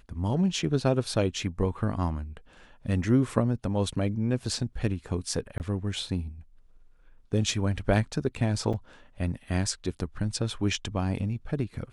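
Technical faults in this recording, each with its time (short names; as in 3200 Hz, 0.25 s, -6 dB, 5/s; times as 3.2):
5.58–5.6 gap 19 ms
8.73–8.74 gap 5.7 ms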